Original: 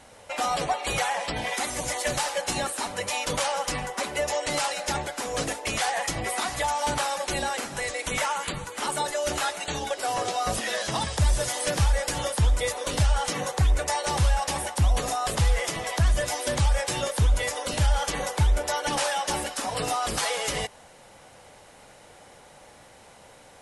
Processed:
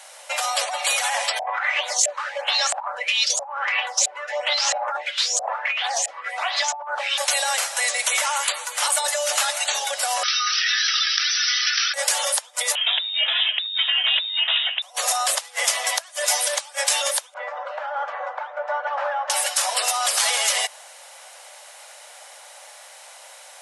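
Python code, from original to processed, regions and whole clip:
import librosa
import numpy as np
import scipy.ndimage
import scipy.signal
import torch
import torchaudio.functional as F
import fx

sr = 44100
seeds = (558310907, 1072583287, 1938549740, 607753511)

y = fx.chain(x, sr, fx.filter_lfo_lowpass(shape='saw_up', hz=1.5, low_hz=670.0, high_hz=7600.0, q=6.8),
    fx.stagger_phaser(hz=1.0), at=(1.39, 7.18))
y = fx.chain(y, sr, fx.brickwall_bandpass(low_hz=1200.0, high_hz=6000.0),
    fx.env_flatten(amount_pct=70), at=(10.23, 11.94))
y = fx.chain(y, sr, fx.freq_invert(carrier_hz=3700),
    fx.low_shelf(hz=330.0, db=-8.5), at=(12.75, 14.82))
y = fx.chain(y, sr, fx.cheby1_bandpass(low_hz=560.0, high_hz=1400.0, order=2),
    fx.air_absorb(metres=60.0), at=(17.34, 19.3))
y = fx.over_compress(y, sr, threshold_db=-28.0, ratio=-1.0)
y = scipy.signal.sosfilt(scipy.signal.ellip(4, 1.0, 60, 580.0, 'highpass', fs=sr, output='sos'), y)
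y = fx.high_shelf(y, sr, hz=2500.0, db=10.0)
y = F.gain(torch.from_numpy(y), 1.5).numpy()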